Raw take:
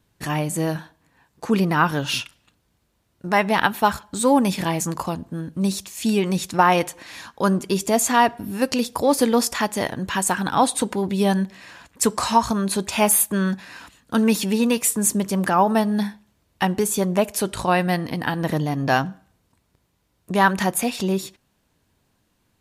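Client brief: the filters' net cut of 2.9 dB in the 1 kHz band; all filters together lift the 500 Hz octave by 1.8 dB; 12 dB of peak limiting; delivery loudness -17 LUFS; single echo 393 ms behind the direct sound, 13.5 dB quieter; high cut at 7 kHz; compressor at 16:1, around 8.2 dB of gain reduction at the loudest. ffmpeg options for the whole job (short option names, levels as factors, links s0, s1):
-af "lowpass=7000,equalizer=f=500:t=o:g=3.5,equalizer=f=1000:t=o:g=-5,acompressor=threshold=0.1:ratio=16,alimiter=limit=0.0944:level=0:latency=1,aecho=1:1:393:0.211,volume=4.73"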